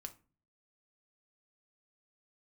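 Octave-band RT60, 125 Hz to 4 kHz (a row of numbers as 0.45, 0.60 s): 0.65, 0.55, 0.40, 0.35, 0.30, 0.20 s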